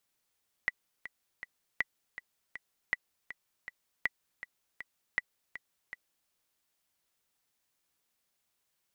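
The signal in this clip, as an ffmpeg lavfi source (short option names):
-f lavfi -i "aevalsrc='pow(10,(-15-13.5*gte(mod(t,3*60/160),60/160))/20)*sin(2*PI*1970*mod(t,60/160))*exp(-6.91*mod(t,60/160)/0.03)':d=5.62:s=44100"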